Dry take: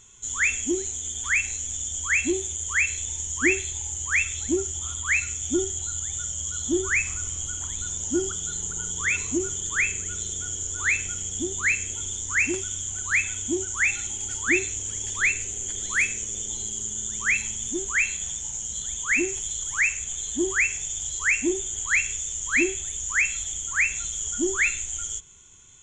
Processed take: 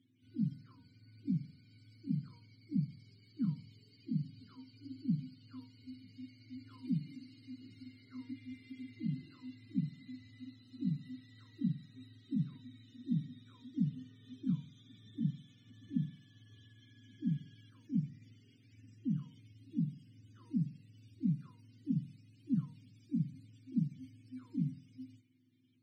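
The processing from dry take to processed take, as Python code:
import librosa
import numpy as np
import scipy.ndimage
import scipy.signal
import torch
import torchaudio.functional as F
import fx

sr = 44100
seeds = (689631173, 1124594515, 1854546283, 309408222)

y = fx.octave_mirror(x, sr, pivot_hz=600.0)
y = fx.vowel_filter(y, sr, vowel='i')
y = fx.hpss(y, sr, part='percussive', gain_db=-7)
y = F.gain(torch.from_numpy(y), 1.5).numpy()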